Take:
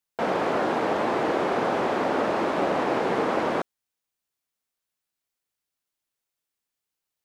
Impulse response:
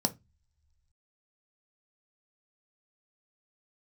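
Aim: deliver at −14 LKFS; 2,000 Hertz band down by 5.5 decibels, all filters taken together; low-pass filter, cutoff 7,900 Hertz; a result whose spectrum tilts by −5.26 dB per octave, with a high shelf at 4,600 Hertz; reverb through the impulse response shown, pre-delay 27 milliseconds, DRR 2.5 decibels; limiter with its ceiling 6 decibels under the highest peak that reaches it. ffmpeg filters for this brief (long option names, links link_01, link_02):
-filter_complex "[0:a]lowpass=7900,equalizer=frequency=2000:width_type=o:gain=-9,highshelf=frequency=4600:gain=9,alimiter=limit=-18.5dB:level=0:latency=1,asplit=2[link_01][link_02];[1:a]atrim=start_sample=2205,adelay=27[link_03];[link_02][link_03]afir=irnorm=-1:irlink=0,volume=-8.5dB[link_04];[link_01][link_04]amix=inputs=2:normalize=0,volume=10dB"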